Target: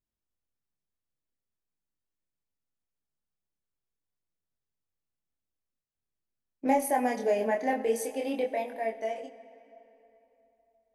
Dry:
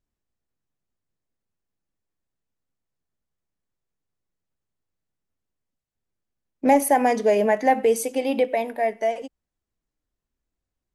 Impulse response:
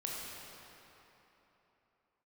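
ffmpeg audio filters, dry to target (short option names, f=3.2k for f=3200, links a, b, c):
-filter_complex "[0:a]flanger=delay=22.5:depth=4.9:speed=0.45,asplit=2[a][b];[1:a]atrim=start_sample=2205[c];[b][c]afir=irnorm=-1:irlink=0,volume=-13.5dB[d];[a][d]amix=inputs=2:normalize=0,volume=-6.5dB"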